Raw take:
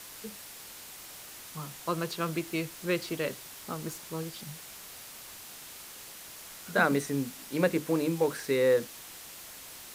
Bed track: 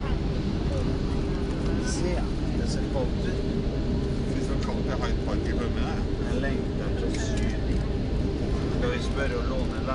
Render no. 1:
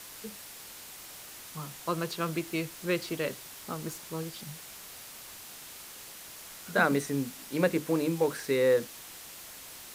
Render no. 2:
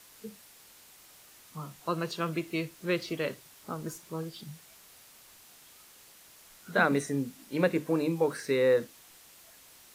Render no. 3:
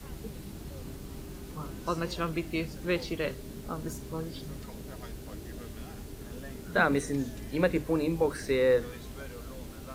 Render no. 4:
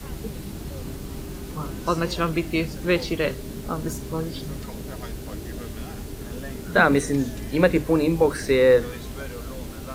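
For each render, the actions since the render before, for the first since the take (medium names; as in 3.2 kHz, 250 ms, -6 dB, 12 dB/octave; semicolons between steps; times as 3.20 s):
no audible change
noise print and reduce 9 dB
add bed track -15.5 dB
trim +8 dB; peak limiter -3 dBFS, peak gain reduction 1 dB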